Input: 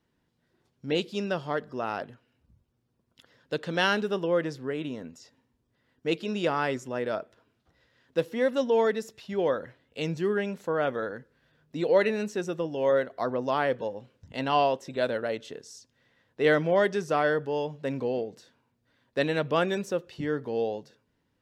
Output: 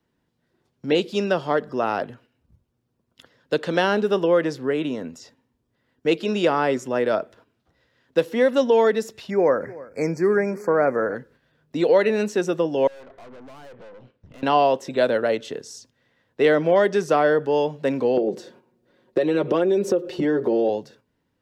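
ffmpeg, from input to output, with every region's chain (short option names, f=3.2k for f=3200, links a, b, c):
-filter_complex "[0:a]asettb=1/sr,asplit=3[a][b][c];[a]atrim=end=9.304[d];[b]atrim=start=9.3:end=11.15,asetpts=PTS-STARTPTS,afade=t=in:d=0.004:c=qsin,afade=t=out:st=1.846:d=0.004:c=qsin,asuperstop=centerf=3300:order=20:qfactor=1.7,aecho=1:1:307:0.0841,atrim=end_sample=81585[e];[c]atrim=start=11.146[f];[d][e]acrossfade=d=0.004:c1=hsin:c2=qsin[g];[g][f]acrossfade=d=0.004:c1=qsin:c2=hsin,asettb=1/sr,asplit=3[h][i][j];[h]atrim=end=12.874[k];[i]atrim=start=12.87:end=14.43,asetpts=PTS-STARTPTS,afade=t=in:d=0.004:c=qsin,afade=t=out:st=1.556:d=0.004:c=qsin,lowpass=3.7k,acompressor=threshold=-43dB:ratio=2.5:attack=3.2:release=140:knee=1:detection=peak,aeval=exprs='(tanh(355*val(0)+0.65)-tanh(0.65))/355':c=same[l];[j]atrim=start=14.426[m];[k][l]acrossfade=d=0.004:c1=hsin:c2=qsin[n];[n][m]acrossfade=d=0.004:c1=qsin:c2=hsin,asettb=1/sr,asplit=3[o][p][q];[o]atrim=end=18.174[r];[p]atrim=start=18.17:end=20.69,asetpts=PTS-STARTPTS,afade=t=in:d=0.004:c=qsin,afade=t=out:st=2.516:d=0.004:c=qsin,equalizer=f=390:w=0.91:g=13.5,aecho=1:1:5.5:0.65,atrim=end_sample=111132,acompressor=threshold=-26dB:ratio=5:attack=3.2:release=140:knee=1:detection=peak[s];[q]atrim=start=20.686[t];[r][s]acrossfade=d=0.004:c1=hsin:c2=qsin[u];[u][t]acrossfade=d=0.004:c1=qsin:c2=hsin,agate=range=-7dB:threshold=-59dB:ratio=16:detection=peak,equalizer=f=410:w=0.35:g=2.5,acrossover=split=190|930[v][w][x];[v]acompressor=threshold=-49dB:ratio=4[y];[w]acompressor=threshold=-22dB:ratio=4[z];[x]acompressor=threshold=-32dB:ratio=4[aa];[y][z][aa]amix=inputs=3:normalize=0,volume=7dB"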